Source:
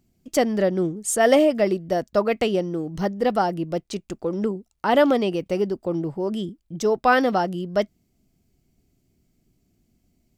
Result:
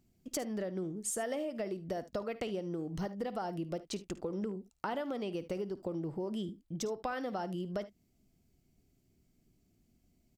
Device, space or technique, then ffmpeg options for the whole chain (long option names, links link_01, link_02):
serial compression, peaks first: -af "acompressor=threshold=-25dB:ratio=6,acompressor=threshold=-31dB:ratio=2,aecho=1:1:54|74:0.133|0.126,volume=-5dB"